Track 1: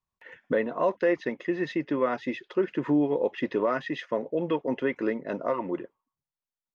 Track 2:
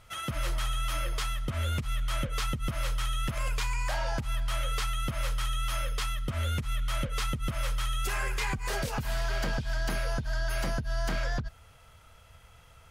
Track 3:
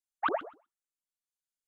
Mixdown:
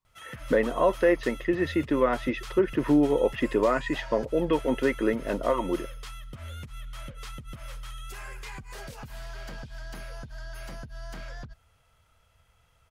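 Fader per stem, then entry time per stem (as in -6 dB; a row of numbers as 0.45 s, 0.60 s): +2.5 dB, -9.5 dB, -15.5 dB; 0.00 s, 0.05 s, 0.40 s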